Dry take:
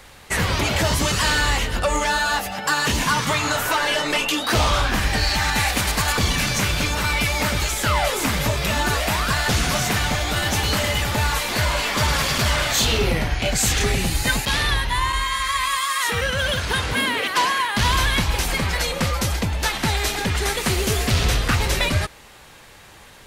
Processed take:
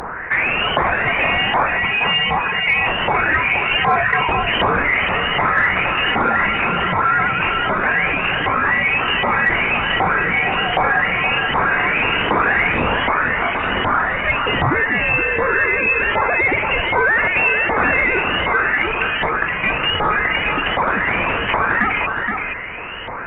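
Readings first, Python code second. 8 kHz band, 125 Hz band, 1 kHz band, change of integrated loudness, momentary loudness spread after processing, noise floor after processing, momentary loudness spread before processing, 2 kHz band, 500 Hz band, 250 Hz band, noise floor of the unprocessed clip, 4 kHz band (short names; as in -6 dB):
under -40 dB, -5.5 dB, +6.0 dB, +4.0 dB, 3 LU, -24 dBFS, 3 LU, +8.0 dB, +4.0 dB, +1.0 dB, -46 dBFS, -1.0 dB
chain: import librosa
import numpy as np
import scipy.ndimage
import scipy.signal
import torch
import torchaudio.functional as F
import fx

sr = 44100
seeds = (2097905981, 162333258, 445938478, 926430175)

p1 = np.diff(x, prepend=0.0)
p2 = fx.filter_lfo_highpass(p1, sr, shape='saw_down', hz=1.3, low_hz=670.0, high_hz=2900.0, q=7.0)
p3 = 10.0 ** (-22.0 / 20.0) * np.tanh(p2 / 10.0 ** (-22.0 / 20.0))
p4 = p2 + (p3 * librosa.db_to_amplitude(-9.0))
p5 = fx.freq_invert(p4, sr, carrier_hz=3700)
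p6 = p5 + fx.echo_single(p5, sr, ms=471, db=-9.0, dry=0)
p7 = fx.cheby_harmonics(p6, sr, harmonics=(2, 4), levels_db=(-25, -36), full_scale_db=-9.5)
p8 = fx.env_flatten(p7, sr, amount_pct=50)
y = p8 * librosa.db_to_amplitude(5.0)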